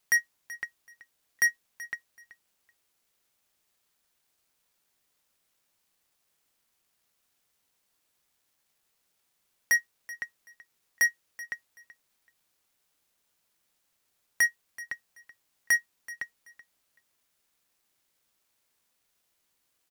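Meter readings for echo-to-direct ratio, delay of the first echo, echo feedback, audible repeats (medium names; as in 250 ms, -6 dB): -18.0 dB, 380 ms, 21%, 2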